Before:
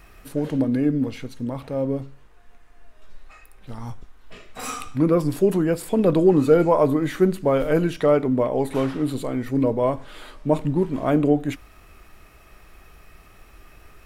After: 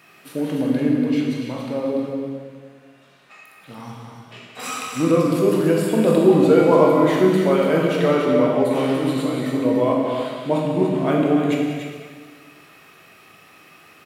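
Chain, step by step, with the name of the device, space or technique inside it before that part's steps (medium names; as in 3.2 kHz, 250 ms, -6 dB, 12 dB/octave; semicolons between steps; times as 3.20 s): stadium PA (high-pass 140 Hz 24 dB/octave; peaking EQ 2.9 kHz +6 dB 1.5 oct; loudspeakers at several distances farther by 63 m -11 dB, 99 m -7 dB; reverberation RT60 1.6 s, pre-delay 15 ms, DRR -1 dB); trim -2 dB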